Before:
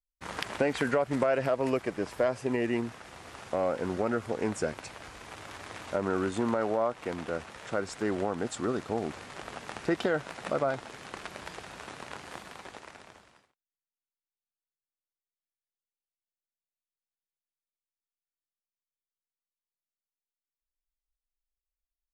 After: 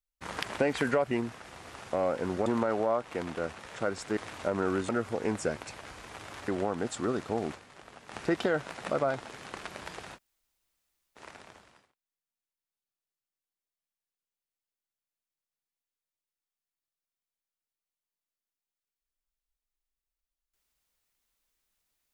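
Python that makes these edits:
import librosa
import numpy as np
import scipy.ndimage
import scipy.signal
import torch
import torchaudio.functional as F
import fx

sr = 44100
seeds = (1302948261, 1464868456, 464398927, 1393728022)

y = fx.edit(x, sr, fx.cut(start_s=1.11, length_s=1.6),
    fx.swap(start_s=4.06, length_s=1.59, other_s=6.37, other_length_s=1.71),
    fx.fade_down_up(start_s=9.14, length_s=0.6, db=-9.5, fade_s=0.26, curve='exp'),
    fx.room_tone_fill(start_s=11.76, length_s=1.02, crossfade_s=0.06), tone=tone)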